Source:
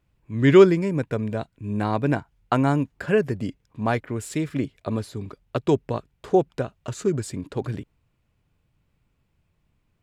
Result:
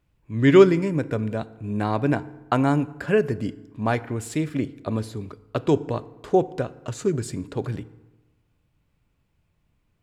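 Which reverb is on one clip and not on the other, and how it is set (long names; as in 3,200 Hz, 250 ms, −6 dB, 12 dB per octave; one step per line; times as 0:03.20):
feedback delay network reverb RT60 1.1 s, low-frequency decay 1.1×, high-frequency decay 0.6×, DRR 15 dB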